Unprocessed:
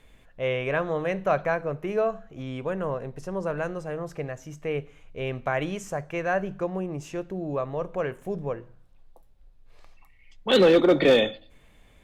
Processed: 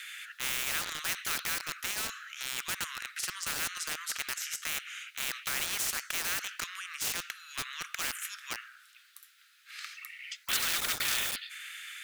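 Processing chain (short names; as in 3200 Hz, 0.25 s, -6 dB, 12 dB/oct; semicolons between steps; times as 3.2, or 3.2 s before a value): steep high-pass 1300 Hz 96 dB/oct; in parallel at -9 dB: bit-crush 7-bit; on the sum: spectral compressor 4:1; gain -2.5 dB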